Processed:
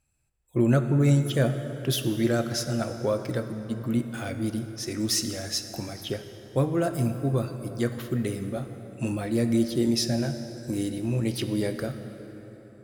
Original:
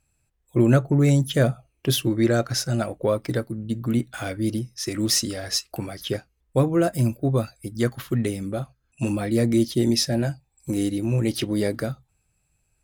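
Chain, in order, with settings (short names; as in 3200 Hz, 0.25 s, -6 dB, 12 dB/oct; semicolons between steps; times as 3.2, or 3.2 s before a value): plate-style reverb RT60 4 s, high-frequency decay 0.6×, DRR 7.5 dB; gain -4.5 dB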